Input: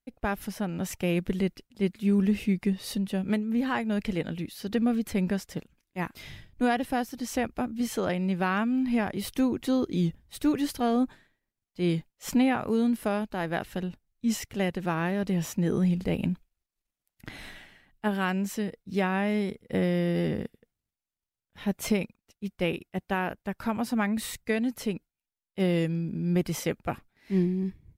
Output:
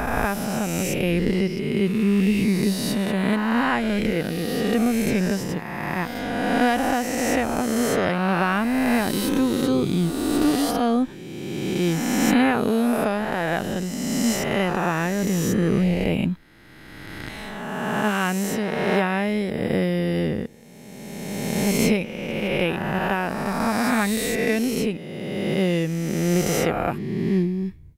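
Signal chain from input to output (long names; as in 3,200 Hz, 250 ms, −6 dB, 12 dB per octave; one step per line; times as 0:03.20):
peak hold with a rise ahead of every peak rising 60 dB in 2.25 s
level +3 dB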